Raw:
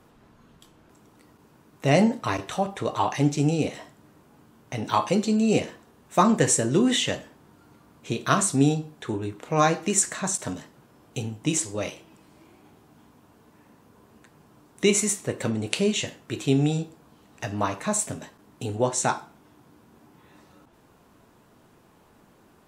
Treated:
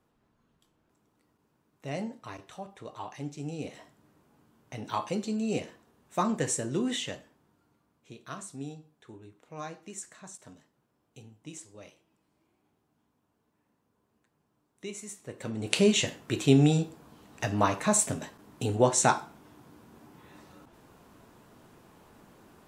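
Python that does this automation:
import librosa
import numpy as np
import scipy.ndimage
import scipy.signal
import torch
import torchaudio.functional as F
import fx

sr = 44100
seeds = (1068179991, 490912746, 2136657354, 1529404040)

y = fx.gain(x, sr, db=fx.line((3.39, -16.0), (3.8, -9.0), (6.93, -9.0), (8.12, -19.5), (14.99, -19.5), (15.53, -8.5), (15.77, 1.0)))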